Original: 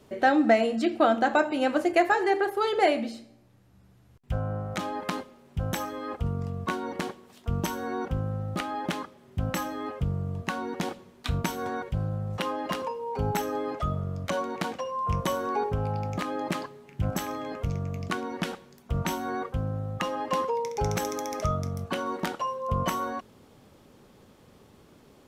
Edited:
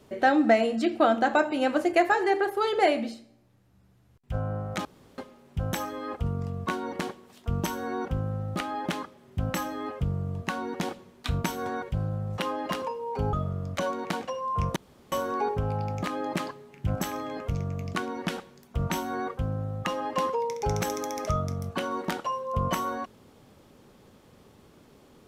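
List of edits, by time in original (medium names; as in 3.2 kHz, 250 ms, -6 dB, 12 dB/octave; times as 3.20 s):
3.14–4.34 s: gain -3.5 dB
4.85–5.18 s: room tone
13.33–13.84 s: delete
15.27 s: insert room tone 0.36 s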